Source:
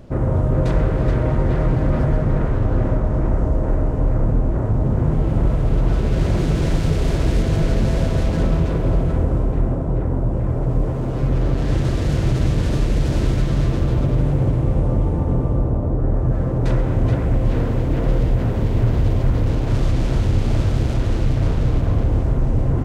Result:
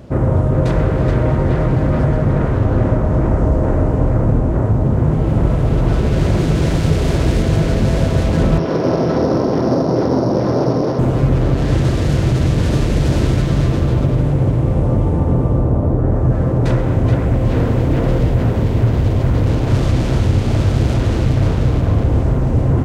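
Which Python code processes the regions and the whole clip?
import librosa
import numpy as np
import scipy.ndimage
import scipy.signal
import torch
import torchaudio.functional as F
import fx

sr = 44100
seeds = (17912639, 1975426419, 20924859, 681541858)

y = fx.chain(x, sr, fx.sample_sort(block=8),
    fx.bandpass_edges(low_hz=240.0, high_hz=2600.0), at=(8.58, 10.99))
y = scipy.signal.sosfilt(scipy.signal.butter(2, 55.0, 'highpass', fs=sr, output='sos'), y)
y = fx.rider(y, sr, range_db=10, speed_s=0.5)
y = F.gain(torch.from_numpy(y), 5.5).numpy()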